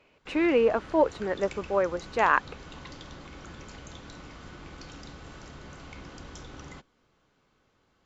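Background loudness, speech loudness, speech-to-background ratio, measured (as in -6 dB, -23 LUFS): -45.0 LUFS, -26.0 LUFS, 19.0 dB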